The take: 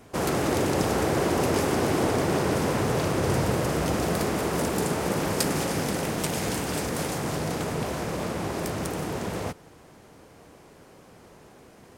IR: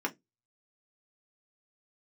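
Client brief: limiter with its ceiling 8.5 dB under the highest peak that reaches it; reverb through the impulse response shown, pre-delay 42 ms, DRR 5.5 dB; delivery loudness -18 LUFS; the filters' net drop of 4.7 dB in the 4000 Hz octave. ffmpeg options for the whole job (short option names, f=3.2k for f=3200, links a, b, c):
-filter_complex "[0:a]equalizer=f=4k:t=o:g=-6.5,alimiter=limit=-19.5dB:level=0:latency=1,asplit=2[a][b];[1:a]atrim=start_sample=2205,adelay=42[c];[b][c]afir=irnorm=-1:irlink=0,volume=-11.5dB[d];[a][d]amix=inputs=2:normalize=0,volume=10dB"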